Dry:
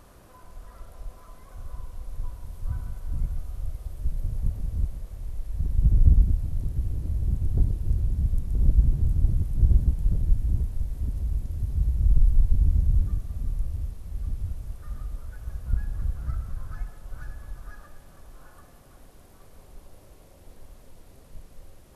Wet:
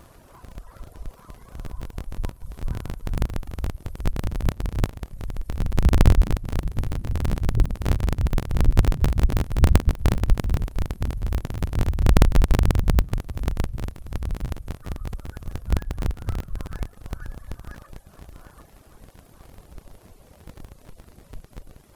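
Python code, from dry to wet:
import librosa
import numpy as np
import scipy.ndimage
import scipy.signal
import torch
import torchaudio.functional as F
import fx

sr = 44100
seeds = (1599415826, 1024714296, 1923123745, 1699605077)

y = fx.cycle_switch(x, sr, every=3, mode='inverted')
y = fx.dereverb_blind(y, sr, rt60_s=0.59)
y = y * librosa.db_to_amplitude(3.0)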